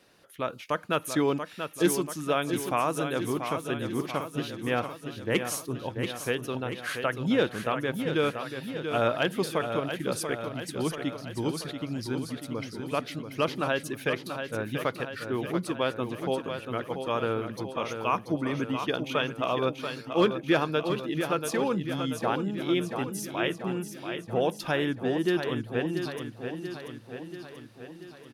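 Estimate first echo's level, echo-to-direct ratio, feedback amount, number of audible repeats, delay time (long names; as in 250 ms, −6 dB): −7.5 dB, −5.5 dB, 59%, 7, 685 ms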